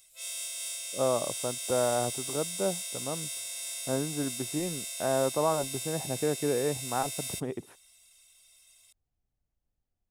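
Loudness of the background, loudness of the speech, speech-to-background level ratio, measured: -34.5 LUFS, -32.5 LUFS, 2.0 dB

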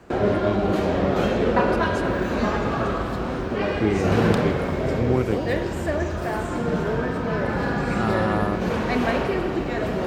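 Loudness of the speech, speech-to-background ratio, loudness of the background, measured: -28.5 LUFS, -4.5 dB, -24.0 LUFS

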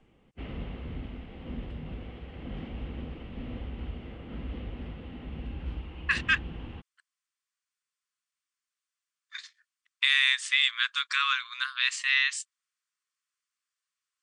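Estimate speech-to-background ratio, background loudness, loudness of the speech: 15.5 dB, -41.0 LUFS, -25.5 LUFS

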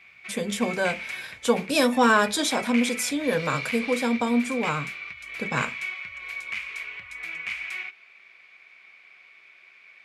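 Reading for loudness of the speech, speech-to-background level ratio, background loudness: -25.0 LUFS, 8.0 dB, -33.0 LUFS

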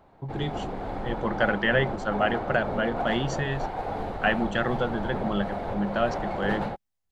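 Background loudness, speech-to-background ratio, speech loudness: -33.0 LUFS, 4.5 dB, -28.5 LUFS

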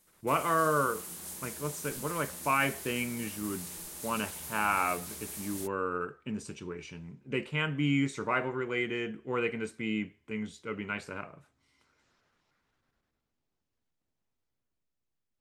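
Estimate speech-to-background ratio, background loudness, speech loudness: 7.5 dB, -40.5 LUFS, -33.0 LUFS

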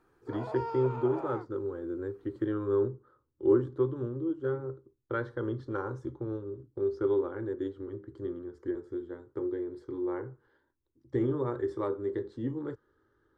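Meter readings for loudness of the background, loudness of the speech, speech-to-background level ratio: -40.5 LUFS, -33.5 LUFS, 7.0 dB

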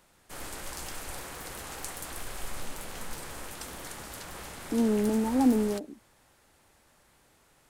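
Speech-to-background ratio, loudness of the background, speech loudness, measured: 13.0 dB, -40.0 LUFS, -27.0 LUFS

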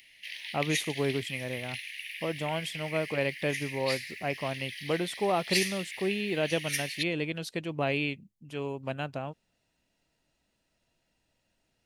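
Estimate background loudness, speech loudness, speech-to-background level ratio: -36.0 LUFS, -32.5 LUFS, 3.5 dB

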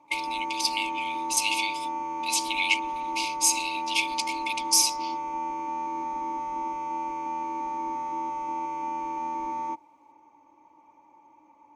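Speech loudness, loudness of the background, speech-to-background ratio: -26.5 LUFS, -32.0 LUFS, 5.5 dB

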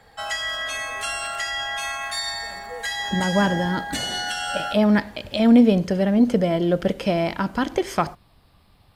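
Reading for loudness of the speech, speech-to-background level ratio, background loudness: -21.0 LUFS, 6.0 dB, -27.0 LUFS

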